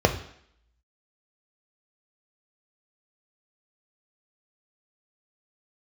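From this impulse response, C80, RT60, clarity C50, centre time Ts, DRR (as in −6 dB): 15.5 dB, 0.65 s, 12.5 dB, 10 ms, 5.5 dB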